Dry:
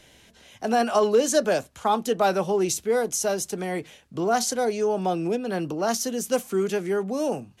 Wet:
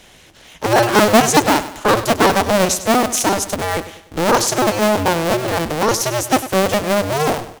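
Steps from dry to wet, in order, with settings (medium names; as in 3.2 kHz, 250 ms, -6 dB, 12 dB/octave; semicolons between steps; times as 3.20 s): cycle switcher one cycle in 2, inverted; feedback delay 99 ms, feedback 44%, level -14 dB; trim +8 dB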